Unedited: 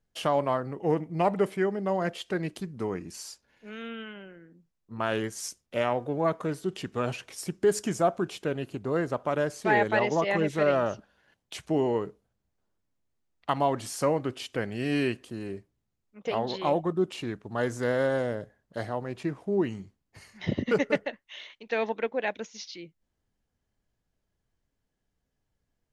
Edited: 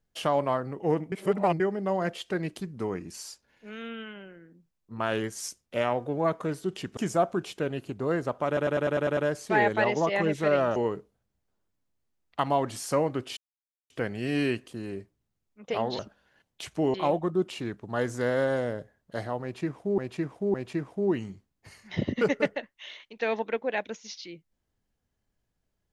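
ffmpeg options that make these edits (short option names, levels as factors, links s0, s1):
-filter_complex "[0:a]asplit=17[s0][s1][s2][s3][s4][s5][s6][s7][s8][s9][s10][s11][s12][s13][s14][s15][s16];[s0]atrim=end=1.122[s17];[s1]atrim=start=1.118:end=1.602,asetpts=PTS-STARTPTS,areverse[s18];[s2]atrim=start=1.598:end=6.972[s19];[s3]atrim=start=7.818:end=9.422[s20];[s4]atrim=start=9.318:end=9.422[s21];[s5]atrim=start=9.318:end=9.422[s22];[s6]atrim=start=9.318:end=9.422[s23];[s7]atrim=start=9.318:end=9.422[s24];[s8]atrim=start=9.318:end=9.422[s25];[s9]atrim=start=9.318:end=9.422[s26];[s10]atrim=start=9.318:end=10.912[s27];[s11]atrim=start=11.858:end=14.47,asetpts=PTS-STARTPTS,afade=t=out:st=2.608:d=0.004:c=hsin,apad=pad_dur=0.53[s28];[s12]atrim=start=14.47:end=16.562,asetpts=PTS-STARTPTS,afade=t=in:d=0.004:c=hsin[s29];[s13]atrim=start=10.908:end=11.862[s30];[s14]atrim=start=16.558:end=19.602[s31];[s15]atrim=start=19.038:end=19.602[s32];[s16]atrim=start=19.038[s33];[s17][s18]acrossfade=d=0.004:c1=hsin:c2=hsin[s34];[s34][s19]acrossfade=d=0.004:c1=hsin:c2=hsin[s35];[s35][s20]acrossfade=d=0.004:c1=hsin:c2=hsin[s36];[s36][s21]acrossfade=d=0.004:c1=hsin:c2=hsin[s37];[s37][s22]acrossfade=d=0.004:c1=hsin:c2=hsin[s38];[s38][s23]acrossfade=d=0.004:c1=hsin:c2=hsin[s39];[s39][s24]acrossfade=d=0.004:c1=hsin:c2=hsin[s40];[s40][s25]acrossfade=d=0.004:c1=hsin:c2=hsin[s41];[s41][s26]acrossfade=d=0.004:c1=hsin:c2=hsin[s42];[s42][s27]acrossfade=d=0.004:c1=hsin:c2=hsin[s43];[s28][s29]concat=n=2:v=0:a=1[s44];[s43][s44]acrossfade=d=0.004:c1=hsin:c2=hsin[s45];[s45][s30]acrossfade=d=0.004:c1=hsin:c2=hsin[s46];[s46][s31]acrossfade=d=0.004:c1=hsin:c2=hsin[s47];[s47][s32]acrossfade=d=0.004:c1=hsin:c2=hsin[s48];[s48][s33]acrossfade=d=0.004:c1=hsin:c2=hsin"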